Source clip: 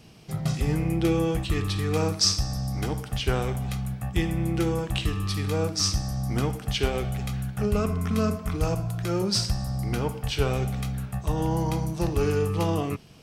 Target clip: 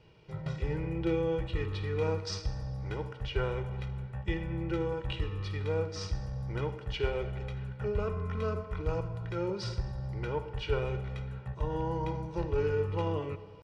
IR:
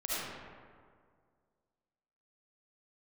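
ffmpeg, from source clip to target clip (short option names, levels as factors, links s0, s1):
-filter_complex "[0:a]lowpass=2700,lowshelf=f=180:g=-3,aecho=1:1:2.1:0.72,atempo=0.97,asplit=2[s0][s1];[1:a]atrim=start_sample=2205[s2];[s1][s2]afir=irnorm=-1:irlink=0,volume=0.106[s3];[s0][s3]amix=inputs=2:normalize=0,volume=0.398"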